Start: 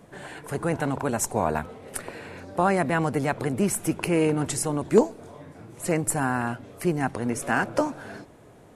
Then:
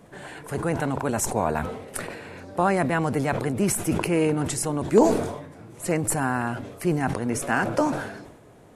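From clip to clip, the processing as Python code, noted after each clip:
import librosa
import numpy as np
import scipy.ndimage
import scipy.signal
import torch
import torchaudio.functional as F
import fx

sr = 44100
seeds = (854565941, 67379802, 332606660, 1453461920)

y = fx.sustainer(x, sr, db_per_s=60.0)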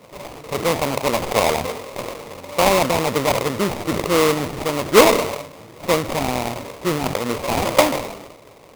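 y = fx.peak_eq(x, sr, hz=560.0, db=13.0, octaves=0.9)
y = fx.sample_hold(y, sr, seeds[0], rate_hz=1600.0, jitter_pct=20)
y = y * librosa.db_to_amplitude(-1.5)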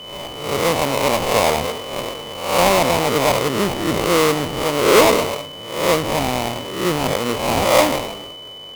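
y = fx.spec_swells(x, sr, rise_s=0.67)
y = fx.cheby_harmonics(y, sr, harmonics=(5,), levels_db=(-17,), full_scale_db=1.5)
y = y + 10.0 ** (-30.0 / 20.0) * np.sin(2.0 * np.pi * 3000.0 * np.arange(len(y)) / sr)
y = y * librosa.db_to_amplitude(-4.0)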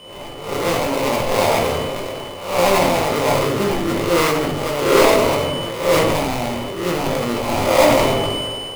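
y = scipy.ndimage.median_filter(x, 9, mode='constant')
y = fx.room_shoebox(y, sr, seeds[1], volume_m3=74.0, walls='mixed', distance_m=0.81)
y = fx.sustainer(y, sr, db_per_s=22.0)
y = y * librosa.db_to_amplitude(-5.0)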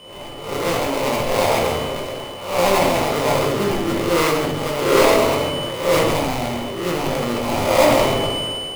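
y = x + 10.0 ** (-10.0 / 20.0) * np.pad(x, (int(134 * sr / 1000.0), 0))[:len(x)]
y = y * librosa.db_to_amplitude(-1.5)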